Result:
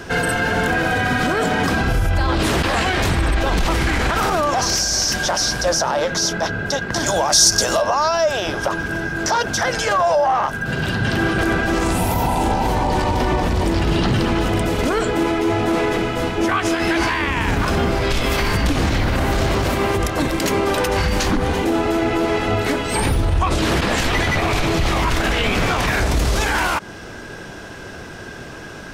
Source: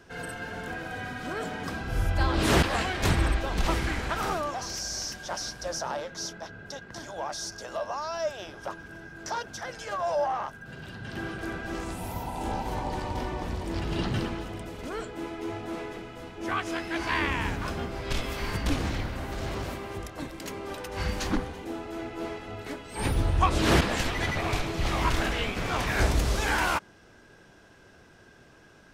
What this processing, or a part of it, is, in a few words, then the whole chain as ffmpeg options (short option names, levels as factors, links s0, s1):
loud club master: -filter_complex "[0:a]acompressor=threshold=0.0355:ratio=3,asoftclip=type=hard:threshold=0.1,alimiter=level_in=29.9:limit=0.891:release=50:level=0:latency=1,asettb=1/sr,asplit=3[s0][s1][s2];[s0]atrim=end=7.064[s3];[s1]atrim=start=7.06:end=7.82,asetpts=PTS-STARTPTS,afade=t=in:d=0.004:c=qsin,afade=t=out:st=0.756:d=0.004:c=qsin,bass=f=250:g=3,treble=f=4000:g=10[s4];[s2]atrim=start=7.816[s5];[s3][s4]acrossfade=d=0.004:c1=hsin:c2=qsin[s6];[s6][s5]acrossfade=d=0.004:c1=qsin:c2=hsin,volume=0.355"